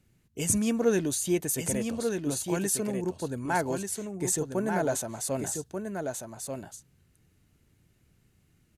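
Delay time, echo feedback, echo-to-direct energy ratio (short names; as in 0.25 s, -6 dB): 1.188 s, no steady repeat, -5.5 dB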